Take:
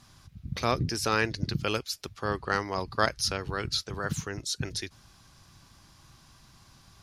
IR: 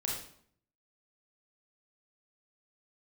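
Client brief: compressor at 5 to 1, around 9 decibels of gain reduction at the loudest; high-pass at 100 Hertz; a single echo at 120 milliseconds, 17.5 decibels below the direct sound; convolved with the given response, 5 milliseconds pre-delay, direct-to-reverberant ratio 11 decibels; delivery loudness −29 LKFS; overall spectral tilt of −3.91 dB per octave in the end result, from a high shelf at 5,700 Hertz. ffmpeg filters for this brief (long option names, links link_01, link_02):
-filter_complex "[0:a]highpass=100,highshelf=frequency=5700:gain=-8,acompressor=threshold=-30dB:ratio=5,aecho=1:1:120:0.133,asplit=2[link_01][link_02];[1:a]atrim=start_sample=2205,adelay=5[link_03];[link_02][link_03]afir=irnorm=-1:irlink=0,volume=-14dB[link_04];[link_01][link_04]amix=inputs=2:normalize=0,volume=7dB"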